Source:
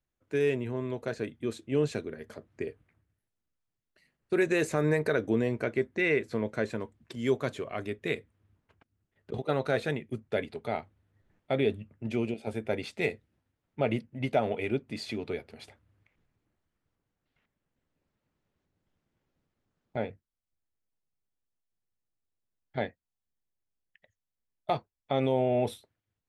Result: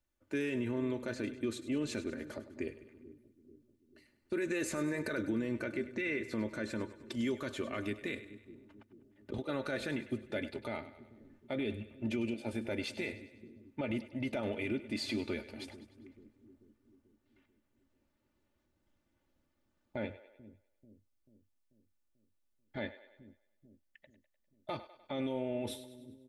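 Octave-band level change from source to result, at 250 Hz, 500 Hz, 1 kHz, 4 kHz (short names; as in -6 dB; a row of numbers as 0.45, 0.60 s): -3.0, -9.0, -10.5, -2.5 dB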